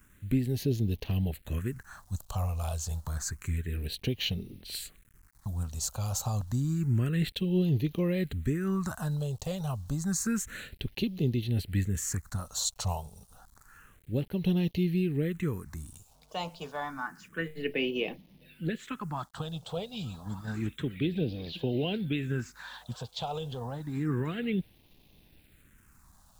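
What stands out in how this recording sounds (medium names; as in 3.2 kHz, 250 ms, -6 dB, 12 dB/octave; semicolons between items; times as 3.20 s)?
a quantiser's noise floor 10-bit, dither none; phasing stages 4, 0.29 Hz, lowest notch 300–1400 Hz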